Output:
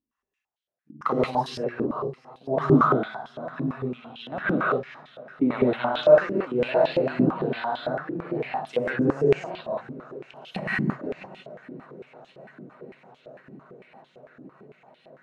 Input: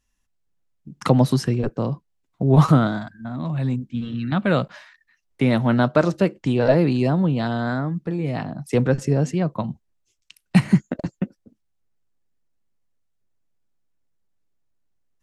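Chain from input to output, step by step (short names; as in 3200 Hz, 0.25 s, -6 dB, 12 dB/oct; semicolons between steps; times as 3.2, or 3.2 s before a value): swung echo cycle 1.08 s, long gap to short 1.5:1, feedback 78%, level -23 dB; non-linear reverb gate 0.21 s rising, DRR -5.5 dB; stepped band-pass 8.9 Hz 300–3300 Hz; gain +2.5 dB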